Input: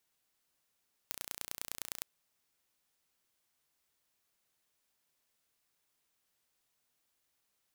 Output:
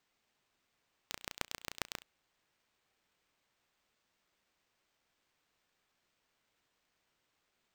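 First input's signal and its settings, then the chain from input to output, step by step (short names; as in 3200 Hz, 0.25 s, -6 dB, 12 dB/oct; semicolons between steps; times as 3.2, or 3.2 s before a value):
pulse train 29.7/s, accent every 3, -9.5 dBFS 0.92 s
band shelf 4600 Hz -14 dB 1.1 oct; careless resampling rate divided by 4×, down none, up hold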